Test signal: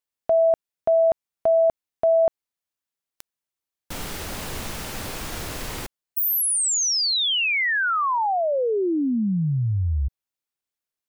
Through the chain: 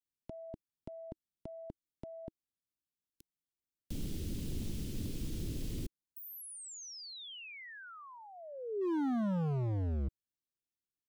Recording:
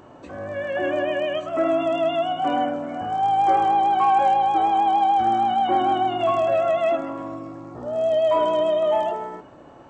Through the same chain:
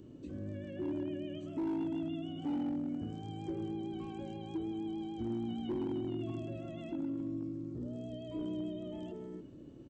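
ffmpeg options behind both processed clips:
-filter_complex "[0:a]firequalizer=gain_entry='entry(320,0);entry(760,-28);entry(3100,-9)':delay=0.05:min_phase=1,acrossover=split=350[a][b];[a]asoftclip=type=hard:threshold=-31.5dB[c];[b]acompressor=threshold=-47dB:ratio=6:attack=4.6:release=47:knee=6:detection=rms[d];[c][d]amix=inputs=2:normalize=0,volume=-1.5dB"

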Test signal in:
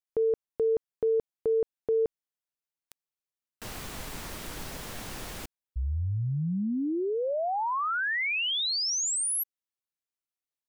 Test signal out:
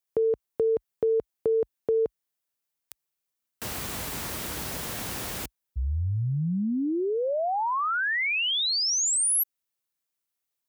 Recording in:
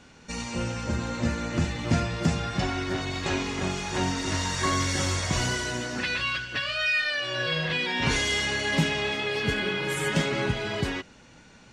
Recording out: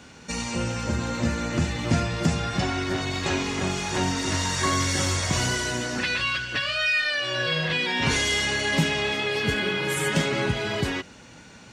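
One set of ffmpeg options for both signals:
-filter_complex "[0:a]highpass=f=50:w=0.5412,highpass=f=50:w=1.3066,highshelf=f=10k:g=7,asplit=2[a][b];[b]acompressor=threshold=-39dB:ratio=6:attack=44:release=86:detection=peak,volume=-2dB[c];[a][c]amix=inputs=2:normalize=0"

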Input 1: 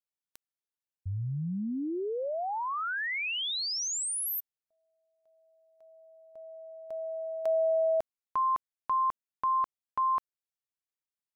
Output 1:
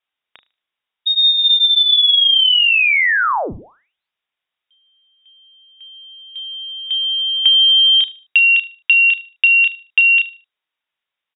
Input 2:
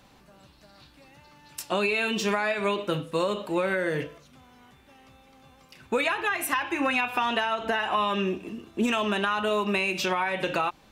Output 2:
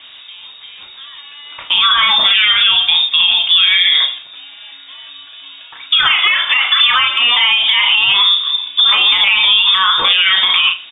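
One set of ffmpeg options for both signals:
-filter_complex "[0:a]aemphasis=mode=reproduction:type=75fm,bandreject=f=50:t=h:w=6,bandreject=f=100:t=h:w=6,bandreject=f=150:t=h:w=6,bandreject=f=200:t=h:w=6,bandreject=f=250:t=h:w=6,bandreject=f=300:t=h:w=6,asplit=2[a][b];[b]adelay=33,volume=-7.5dB[c];[a][c]amix=inputs=2:normalize=0,asplit=2[d][e];[e]adelay=75,lowpass=f=2.6k:p=1,volume=-18.5dB,asplit=2[f][g];[g]adelay=75,lowpass=f=2.6k:p=1,volume=0.31,asplit=2[h][i];[i]adelay=75,lowpass=f=2.6k:p=1,volume=0.31[j];[d][f][h][j]amix=inputs=4:normalize=0,acompressor=threshold=-30dB:ratio=5:attack=32:release=82:knee=1:detection=peak,lowpass=f=3.2k:t=q:w=0.5098,lowpass=f=3.2k:t=q:w=0.6013,lowpass=f=3.2k:t=q:w=0.9,lowpass=f=3.2k:t=q:w=2.563,afreqshift=-3800,acontrast=37,alimiter=level_in=14.5dB:limit=-1dB:release=50:level=0:latency=1,volume=-1dB"

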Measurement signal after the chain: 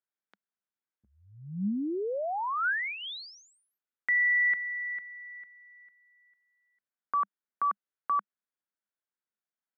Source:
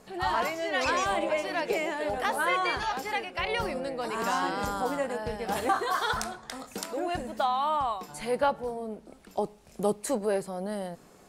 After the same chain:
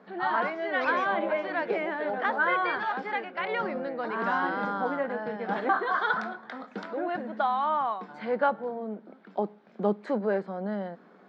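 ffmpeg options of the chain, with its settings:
-af "highpass=f=200:w=0.5412,highpass=f=200:w=1.3066,equalizer=f=200:t=q:w=4:g=7,equalizer=f=1.5k:t=q:w=4:g=6,equalizer=f=2.7k:t=q:w=4:g=-9,lowpass=f=3.2k:w=0.5412,lowpass=f=3.2k:w=1.3066"

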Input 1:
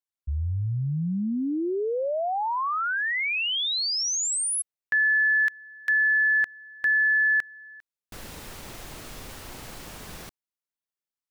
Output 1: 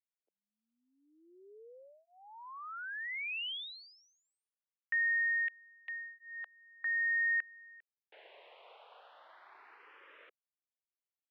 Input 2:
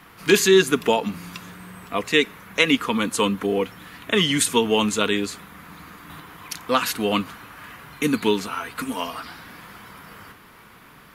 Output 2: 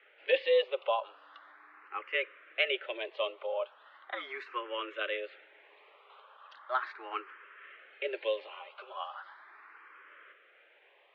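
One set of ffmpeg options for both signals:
-filter_complex "[0:a]highpass=f=340:t=q:w=0.5412,highpass=f=340:t=q:w=1.307,lowpass=f=3.1k:t=q:w=0.5176,lowpass=f=3.1k:t=q:w=0.7071,lowpass=f=3.1k:t=q:w=1.932,afreqshift=120,asplit=2[a][b];[b]afreqshift=0.38[c];[a][c]amix=inputs=2:normalize=1,volume=-9dB"

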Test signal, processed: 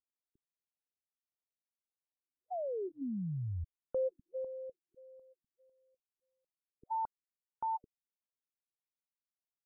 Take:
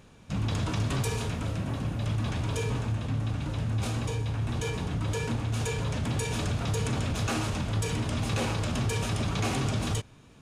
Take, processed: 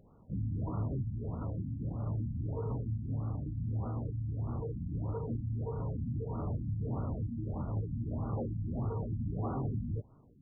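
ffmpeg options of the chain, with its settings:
-af "asuperstop=centerf=1800:order=4:qfactor=2.3,afftfilt=real='re*lt(b*sr/1024,270*pow(1500/270,0.5+0.5*sin(2*PI*1.6*pts/sr)))':imag='im*lt(b*sr/1024,270*pow(1500/270,0.5+0.5*sin(2*PI*1.6*pts/sr)))':win_size=1024:overlap=0.75,volume=-5.5dB"

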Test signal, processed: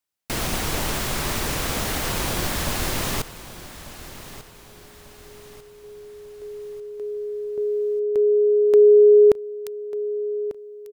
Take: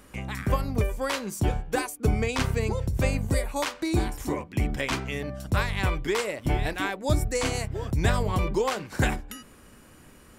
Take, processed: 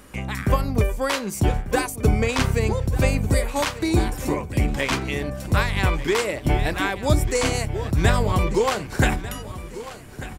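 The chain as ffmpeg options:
-af "aecho=1:1:1194|2388|3582|4776:0.178|0.0782|0.0344|0.0151,volume=5dB"

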